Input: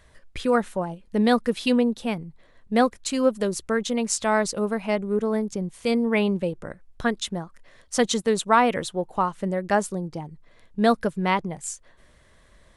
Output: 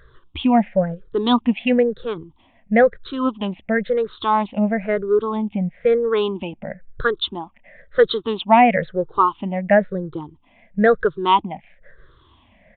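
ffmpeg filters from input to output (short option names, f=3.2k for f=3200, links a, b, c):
-af "afftfilt=real='re*pow(10,22/40*sin(2*PI*(0.58*log(max(b,1)*sr/1024/100)/log(2)-(-1)*(pts-256)/sr)))':imag='im*pow(10,22/40*sin(2*PI*(0.58*log(max(b,1)*sr/1024/100)/log(2)-(-1)*(pts-256)/sr)))':win_size=1024:overlap=0.75,aresample=8000,aresample=44100"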